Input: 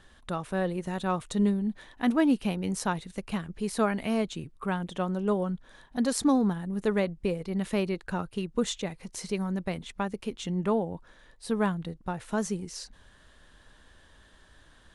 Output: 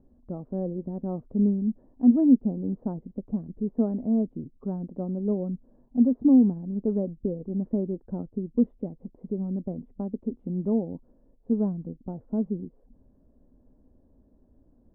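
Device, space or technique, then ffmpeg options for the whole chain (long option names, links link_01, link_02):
under water: -af "lowpass=frequency=620:width=0.5412,lowpass=frequency=620:width=1.3066,equalizer=frequency=250:width_type=o:width=0.48:gain=12,volume=-2.5dB"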